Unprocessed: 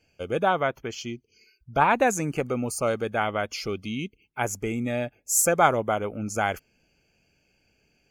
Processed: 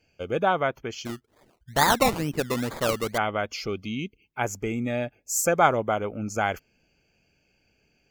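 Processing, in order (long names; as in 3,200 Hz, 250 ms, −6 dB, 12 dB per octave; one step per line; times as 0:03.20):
parametric band 9,900 Hz −13 dB 0.44 octaves
0:01.05–0:03.18: sample-and-hold swept by an LFO 22×, swing 60% 2.2 Hz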